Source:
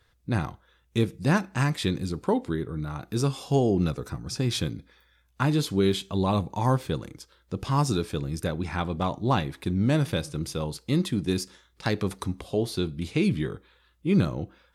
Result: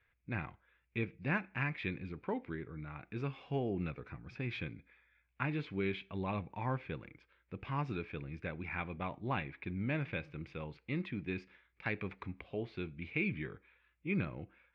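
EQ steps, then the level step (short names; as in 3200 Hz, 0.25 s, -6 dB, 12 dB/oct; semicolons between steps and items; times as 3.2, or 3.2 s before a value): ladder low-pass 2500 Hz, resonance 75%; bell 1600 Hz +3 dB 0.23 oct; -1.5 dB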